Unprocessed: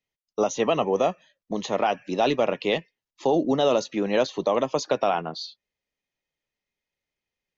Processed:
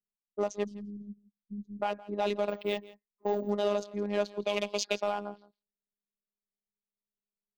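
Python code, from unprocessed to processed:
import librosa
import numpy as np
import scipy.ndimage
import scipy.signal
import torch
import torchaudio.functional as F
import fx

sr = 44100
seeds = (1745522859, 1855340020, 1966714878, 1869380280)

p1 = fx.wiener(x, sr, points=15)
p2 = fx.cheby2_bandstop(p1, sr, low_hz=500.0, high_hz=2500.0, order=4, stop_db=50, at=(0.64, 1.82))
p3 = fx.high_shelf_res(p2, sr, hz=1800.0, db=10.5, q=3.0, at=(4.4, 5.02))
p4 = fx.env_lowpass(p3, sr, base_hz=350.0, full_db=-18.5)
p5 = np.clip(p4, -10.0 ** (-19.0 / 20.0), 10.0 ** (-19.0 / 20.0))
p6 = p4 + (p5 * librosa.db_to_amplitude(-6.5))
p7 = fx.robotise(p6, sr, hz=205.0)
p8 = p7 + 10.0 ** (-20.0 / 20.0) * np.pad(p7, (int(166 * sr / 1000.0), 0))[:len(p7)]
p9 = fx.resample_bad(p8, sr, factor=2, down='none', up='hold', at=(2.49, 3.5))
y = p9 * librosa.db_to_amplitude(-8.5)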